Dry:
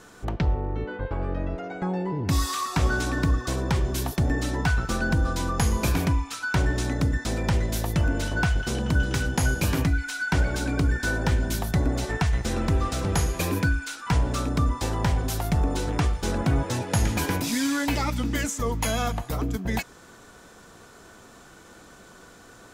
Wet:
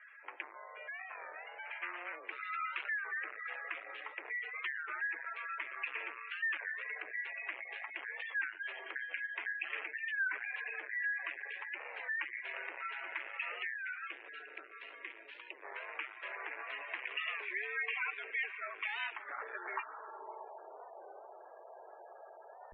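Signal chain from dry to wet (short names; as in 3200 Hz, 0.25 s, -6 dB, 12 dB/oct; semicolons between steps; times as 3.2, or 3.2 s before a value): 1.65–2.16 self-modulated delay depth 0.66 ms; 14.07–15.65 bell 900 Hz -13.5 dB 2.3 oct; on a send: diffused feedback echo 0.611 s, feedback 51%, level -14.5 dB; on the sum: tube stage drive 26 dB, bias 0.35; band-pass sweep 2100 Hz -> 560 Hz, 19.17–20.52; spectral gate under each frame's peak -15 dB strong; mistuned SSB +170 Hz 160–2700 Hz; record warp 33 1/3 rpm, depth 160 cents; gain +4.5 dB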